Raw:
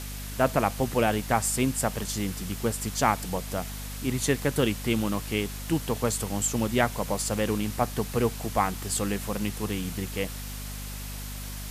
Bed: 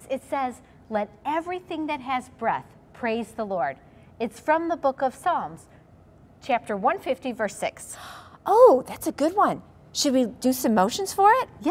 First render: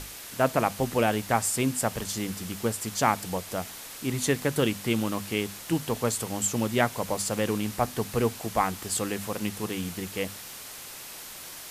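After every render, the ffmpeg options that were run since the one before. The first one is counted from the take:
-af "bandreject=f=50:t=h:w=6,bandreject=f=100:t=h:w=6,bandreject=f=150:t=h:w=6,bandreject=f=200:t=h:w=6,bandreject=f=250:t=h:w=6"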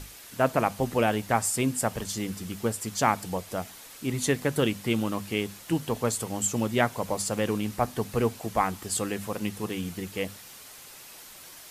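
-af "afftdn=nr=6:nf=-42"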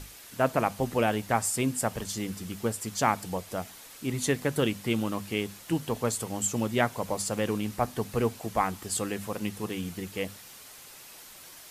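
-af "volume=0.841"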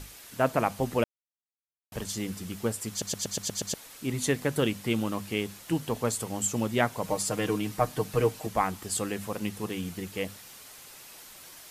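-filter_complex "[0:a]asettb=1/sr,asplit=3[s0][s1][s2];[s0]atrim=end=7.034[s3];[s1]atrim=start=7.03:end=8.47,asetpts=PTS-STARTPTS,afade=t=in:d=0.004:c=qsin,afade=t=out:st=1.436:d=0.004:c=qsin,aecho=1:1:6.5:0.65,atrim=end_sample=63504[s4];[s2]atrim=start=8.466[s5];[s3][s4]acrossfade=d=0.004:c1=hsin:c2=qsin[s6];[s6][s5]acrossfade=d=0.004:c1=qsin:c2=hsin,asplit=10[s7][s8][s9][s10][s11][s12][s13][s14][s15][s16];[s7]atrim=end=1.04,asetpts=PTS-STARTPTS,afade=t=out:st=1.036:d=0.004:c=hsin[s17];[s8]atrim=start=1.04:end=1.92,asetpts=PTS-STARTPTS,volume=0[s18];[s9]atrim=start=1.92:end=3.022,asetpts=PTS-STARTPTS,afade=t=in:d=0.004:c=hsin[s19];[s10]atrim=start=2.898:end=3.022[s20];[s11]atrim=start=2.898:end=3.022[s21];[s12]atrim=start=2.898:end=3.022[s22];[s13]atrim=start=2.898:end=3.022[s23];[s14]atrim=start=2.898:end=3.022[s24];[s15]atrim=start=2.898:end=3.022[s25];[s16]atrim=start=3.738[s26];[s17][s18][s19]concat=n=3:v=0:a=1[s27];[s27][s20]acrossfade=d=0.004:c1=hsin:c2=hsin[s28];[s28][s21]acrossfade=d=0.004:c1=hsin:c2=hsin[s29];[s29][s22]acrossfade=d=0.004:c1=hsin:c2=hsin[s30];[s30][s23]acrossfade=d=0.004:c1=hsin:c2=hsin[s31];[s31][s24]acrossfade=d=0.004:c1=hsin:c2=hsin[s32];[s32][s25]acrossfade=d=0.004:c1=hsin:c2=hsin[s33];[s33][s26]acrossfade=d=0.004:c1=hsin:c2=hsin"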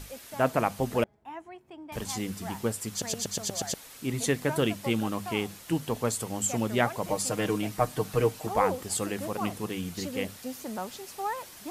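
-filter_complex "[1:a]volume=0.168[s0];[0:a][s0]amix=inputs=2:normalize=0"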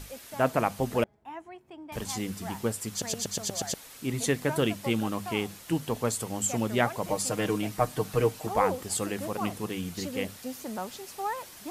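-af anull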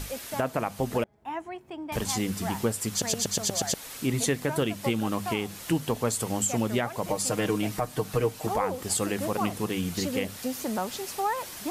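-filter_complex "[0:a]asplit=2[s0][s1];[s1]acompressor=threshold=0.0178:ratio=6,volume=1.33[s2];[s0][s2]amix=inputs=2:normalize=0,alimiter=limit=0.178:level=0:latency=1:release=245"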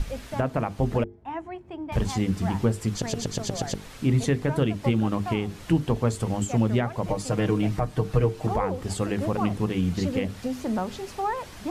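-af "aemphasis=mode=reproduction:type=bsi,bandreject=f=50:t=h:w=6,bandreject=f=100:t=h:w=6,bandreject=f=150:t=h:w=6,bandreject=f=200:t=h:w=6,bandreject=f=250:t=h:w=6,bandreject=f=300:t=h:w=6,bandreject=f=350:t=h:w=6,bandreject=f=400:t=h:w=6,bandreject=f=450:t=h:w=6"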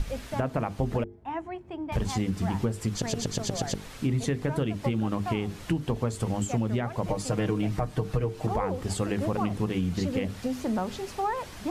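-af "acompressor=threshold=0.0708:ratio=6"

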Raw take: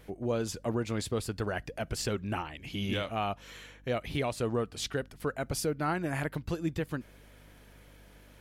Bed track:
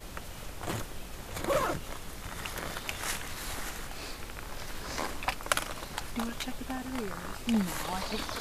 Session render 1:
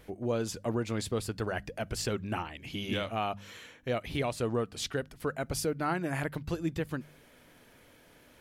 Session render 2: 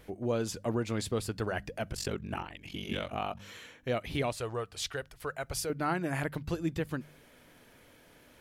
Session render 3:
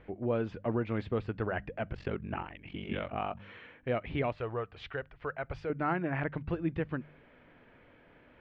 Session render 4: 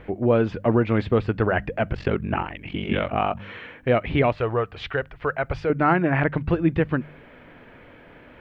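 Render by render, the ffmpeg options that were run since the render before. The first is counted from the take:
-af "bandreject=f=50:t=h:w=4,bandreject=f=100:t=h:w=4,bandreject=f=150:t=h:w=4,bandreject=f=200:t=h:w=4"
-filter_complex "[0:a]asettb=1/sr,asplit=3[s0][s1][s2];[s0]atrim=end=1.914[s3];[s1]atrim=start=1.91:end=3.4,asetpts=PTS-STARTPTS,afade=t=in:d=0.004:c=qsin,afade=t=out:st=1.486:d=0.004:c=qsin,aeval=exprs='val(0)*sin(2*PI*23*n/s)':c=same[s4];[s2]atrim=start=3.396[s5];[s3][s4]acrossfade=d=0.004:c1=hsin:c2=qsin[s6];[s6][s5]acrossfade=d=0.004:c1=qsin:c2=hsin,asettb=1/sr,asplit=3[s7][s8][s9];[s7]atrim=end=4.324[s10];[s8]atrim=start=4.32:end=5.7,asetpts=PTS-STARTPTS,afade=t=in:d=0.004:c=qsin,afade=t=out:st=1.376:d=0.004:c=qsin,equalizer=f=230:t=o:w=1.3:g=-14.5[s11];[s9]atrim=start=5.696[s12];[s10][s11]acrossfade=d=0.004:c1=hsin:c2=qsin[s13];[s13][s12]acrossfade=d=0.004:c1=qsin:c2=hsin"
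-af "lowpass=f=2600:w=0.5412,lowpass=f=2600:w=1.3066"
-af "volume=3.98"

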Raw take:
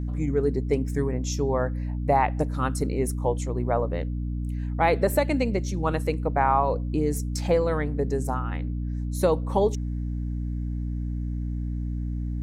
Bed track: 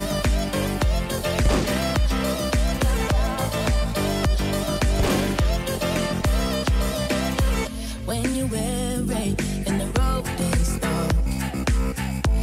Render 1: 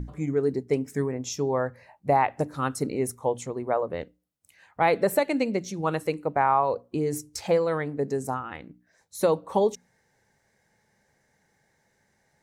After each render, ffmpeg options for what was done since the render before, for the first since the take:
-af "bandreject=f=60:t=h:w=6,bandreject=f=120:t=h:w=6,bandreject=f=180:t=h:w=6,bandreject=f=240:t=h:w=6,bandreject=f=300:t=h:w=6"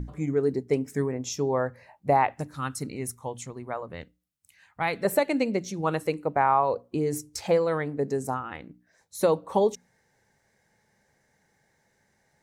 -filter_complex "[0:a]asettb=1/sr,asplit=3[s0][s1][s2];[s0]atrim=end=2.344[s3];[s1]atrim=start=2.34:end=5.05,asetpts=PTS-STARTPTS,afade=t=in:d=0.004:c=qsin,afade=t=out:st=2.706:d=0.004:c=qsin,equalizer=f=490:t=o:w=1.9:g=-10.5[s4];[s2]atrim=start=5.046[s5];[s3][s4]acrossfade=d=0.004:c1=hsin:c2=qsin[s6];[s6][s5]acrossfade=d=0.004:c1=qsin:c2=hsin"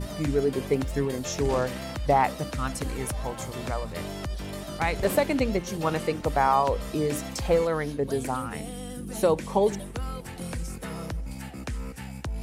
-filter_complex "[1:a]volume=0.251[s0];[0:a][s0]amix=inputs=2:normalize=0"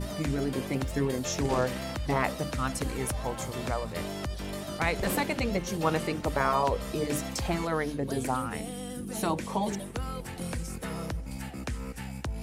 -af "afftfilt=real='re*lt(hypot(re,im),0.501)':imag='im*lt(hypot(re,im),0.501)':win_size=1024:overlap=0.75,bandreject=f=50:t=h:w=6,bandreject=f=100:t=h:w=6,bandreject=f=150:t=h:w=6"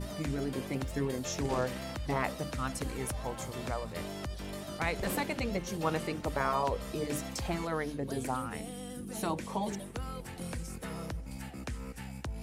-af "volume=0.596"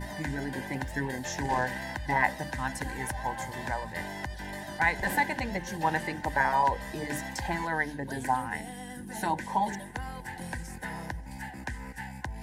-af "superequalizer=7b=0.631:9b=3.16:10b=0.447:11b=3.98"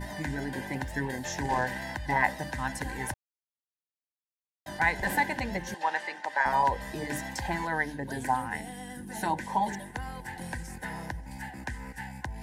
-filter_complex "[0:a]asettb=1/sr,asplit=3[s0][s1][s2];[s0]atrim=end=5.744[s3];[s1]atrim=start=5.74:end=6.46,asetpts=PTS-STARTPTS,afade=t=in:d=0.004:c=qsin,afade=t=out:st=0.716:d=0.004:c=qsin,highpass=640,lowpass=6400[s4];[s2]atrim=start=6.456[s5];[s3][s4]acrossfade=d=0.004:c1=hsin:c2=qsin[s6];[s6][s5]acrossfade=d=0.004:c1=qsin:c2=hsin,asplit=3[s7][s8][s9];[s7]atrim=end=3.14,asetpts=PTS-STARTPTS,afade=t=out:st=3.136:d=0.004:c=hsin[s10];[s8]atrim=start=3.14:end=4.66,asetpts=PTS-STARTPTS,volume=0[s11];[s9]atrim=start=4.66,asetpts=PTS-STARTPTS,afade=t=in:d=0.004:c=hsin[s12];[s10][s11][s12]concat=n=3:v=0:a=1"

